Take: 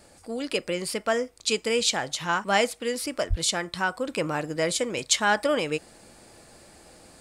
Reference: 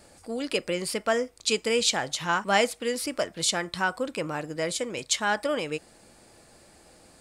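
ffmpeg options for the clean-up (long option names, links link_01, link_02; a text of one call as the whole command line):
ffmpeg -i in.wav -filter_complex "[0:a]asplit=3[link_01][link_02][link_03];[link_01]afade=type=out:start_time=3.29:duration=0.02[link_04];[link_02]highpass=frequency=140:width=0.5412,highpass=frequency=140:width=1.3066,afade=type=in:start_time=3.29:duration=0.02,afade=type=out:start_time=3.41:duration=0.02[link_05];[link_03]afade=type=in:start_time=3.41:duration=0.02[link_06];[link_04][link_05][link_06]amix=inputs=3:normalize=0,asetnsamples=nb_out_samples=441:pad=0,asendcmd='4.08 volume volume -3.5dB',volume=0dB" out.wav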